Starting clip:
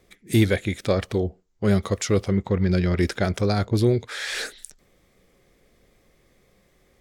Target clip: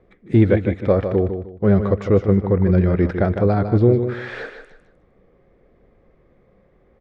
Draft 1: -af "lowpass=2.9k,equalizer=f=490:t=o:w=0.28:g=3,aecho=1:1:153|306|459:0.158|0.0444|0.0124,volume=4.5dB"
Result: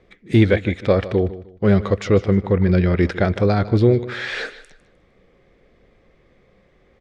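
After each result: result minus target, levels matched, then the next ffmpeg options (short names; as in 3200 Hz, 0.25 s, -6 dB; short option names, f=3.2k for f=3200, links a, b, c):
4000 Hz band +12.5 dB; echo-to-direct -7.5 dB
-af "lowpass=1.3k,equalizer=f=490:t=o:w=0.28:g=3,aecho=1:1:153|306|459:0.158|0.0444|0.0124,volume=4.5dB"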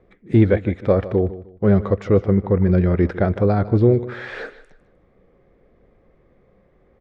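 echo-to-direct -7.5 dB
-af "lowpass=1.3k,equalizer=f=490:t=o:w=0.28:g=3,aecho=1:1:153|306|459:0.376|0.105|0.0295,volume=4.5dB"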